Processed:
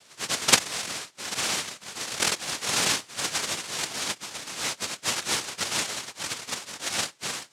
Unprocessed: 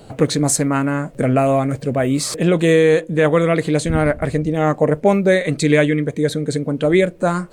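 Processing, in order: spectrum mirrored in octaves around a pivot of 1100 Hz; noise vocoder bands 1; gain -10.5 dB

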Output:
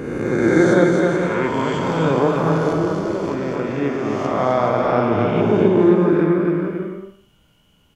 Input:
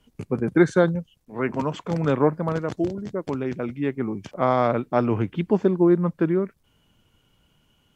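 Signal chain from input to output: spectral swells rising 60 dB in 1.79 s; bouncing-ball echo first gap 0.26 s, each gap 0.65×, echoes 5; Schroeder reverb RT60 0.46 s, DRR 6 dB; gain -1 dB

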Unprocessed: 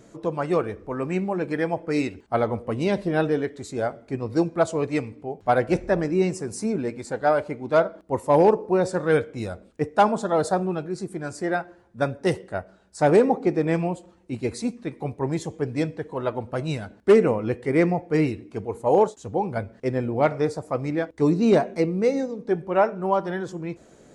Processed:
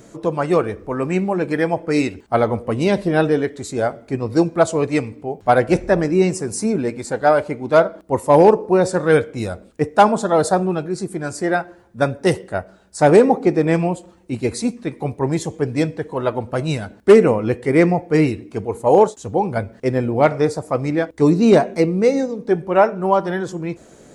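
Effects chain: high shelf 9500 Hz +8 dB; gain +6 dB

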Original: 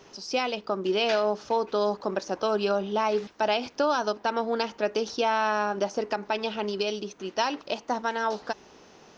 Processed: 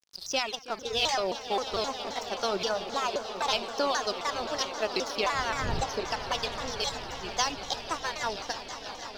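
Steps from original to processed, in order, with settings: trilling pitch shifter +3 st, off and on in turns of 0.588 s; wind noise 110 Hz -38 dBFS; crossover distortion -40.5 dBFS; reverse; upward compressor, threshold -39 dBFS; reverse; low shelf 330 Hz -4 dB; reverb removal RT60 2 s; bell 4700 Hz +9.5 dB 1.2 oct; on a send: swelling echo 0.163 s, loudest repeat 5, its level -15 dB; on the sum: shaped vibrato saw down 3.8 Hz, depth 250 cents; gain -2 dB

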